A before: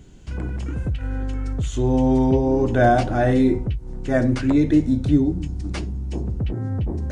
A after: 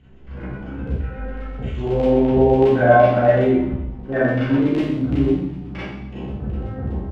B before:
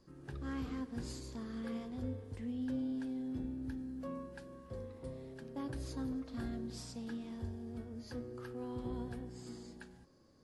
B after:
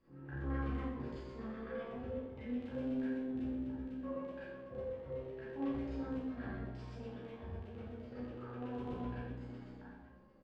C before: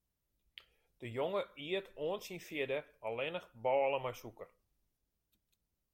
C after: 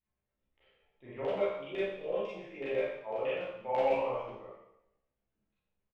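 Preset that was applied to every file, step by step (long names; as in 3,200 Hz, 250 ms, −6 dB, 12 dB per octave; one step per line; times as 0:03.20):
auto-filter low-pass saw down 8 Hz 420–2,900 Hz
double-tracking delay 15 ms −3.5 dB
four-comb reverb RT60 0.81 s, combs from 29 ms, DRR −9 dB
level −10.5 dB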